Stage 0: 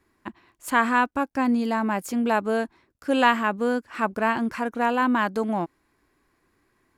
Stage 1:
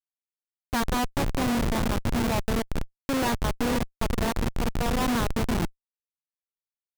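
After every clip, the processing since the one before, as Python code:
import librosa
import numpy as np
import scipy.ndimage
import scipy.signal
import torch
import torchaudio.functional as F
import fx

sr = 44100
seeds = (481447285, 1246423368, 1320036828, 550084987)

y = fx.echo_diffused(x, sr, ms=483, feedback_pct=48, wet_db=-6.0)
y = fx.schmitt(y, sr, flips_db=-19.0)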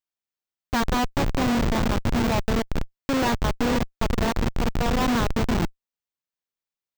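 y = fx.peak_eq(x, sr, hz=11000.0, db=-14.5, octaves=0.46)
y = F.gain(torch.from_numpy(y), 3.0).numpy()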